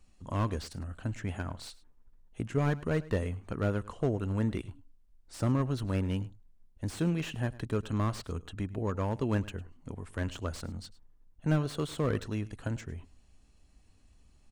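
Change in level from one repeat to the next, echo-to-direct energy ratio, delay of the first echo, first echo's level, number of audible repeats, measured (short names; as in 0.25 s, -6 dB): no steady repeat, -19.5 dB, 0.104 s, -19.5 dB, 1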